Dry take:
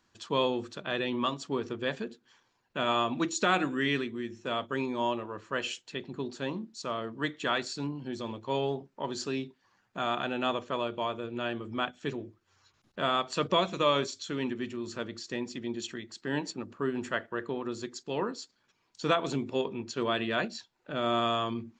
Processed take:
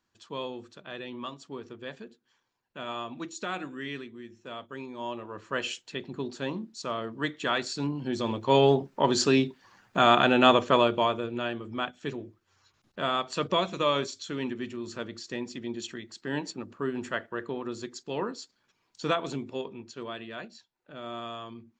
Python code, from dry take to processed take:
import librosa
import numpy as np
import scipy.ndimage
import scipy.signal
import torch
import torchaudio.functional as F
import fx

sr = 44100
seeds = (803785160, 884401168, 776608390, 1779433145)

y = fx.gain(x, sr, db=fx.line((4.93, -8.0), (5.46, 1.5), (7.52, 1.5), (8.74, 11.0), (10.75, 11.0), (11.58, 0.0), (19.03, 0.0), (20.28, -10.0)))